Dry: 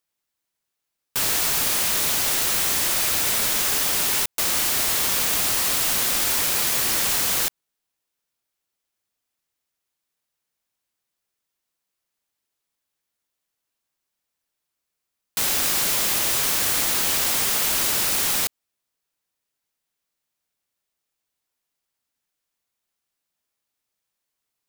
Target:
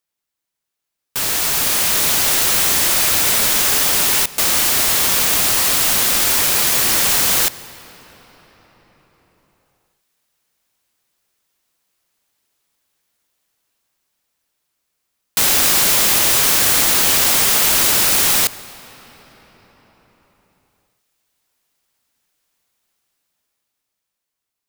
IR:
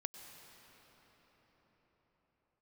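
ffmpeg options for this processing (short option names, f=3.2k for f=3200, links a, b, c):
-filter_complex "[0:a]dynaudnorm=f=140:g=21:m=11.5dB,asplit=2[a][b];[1:a]atrim=start_sample=2205[c];[b][c]afir=irnorm=-1:irlink=0,volume=-5.5dB[d];[a][d]amix=inputs=2:normalize=0,volume=-3dB"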